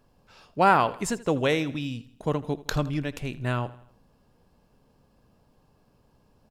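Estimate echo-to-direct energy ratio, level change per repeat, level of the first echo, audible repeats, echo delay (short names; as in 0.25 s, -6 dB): -17.5 dB, -6.5 dB, -18.5 dB, 3, 81 ms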